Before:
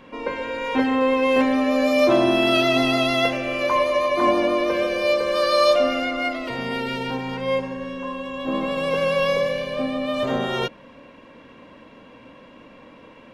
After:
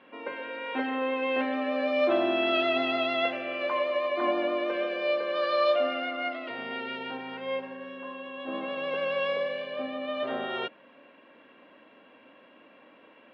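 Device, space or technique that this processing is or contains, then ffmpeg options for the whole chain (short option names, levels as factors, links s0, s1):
phone earpiece: -af "highpass=380,equalizer=f=490:t=q:w=4:g=-6,equalizer=f=1000:t=q:w=4:g=-7,equalizer=f=2200:t=q:w=4:g=-4,lowpass=f=3200:w=0.5412,lowpass=f=3200:w=1.3066,volume=0.631"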